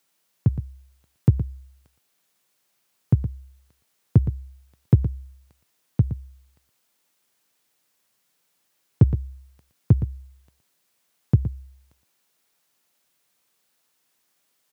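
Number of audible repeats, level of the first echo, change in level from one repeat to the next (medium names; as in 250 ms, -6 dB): 1, -11.5 dB, no regular repeats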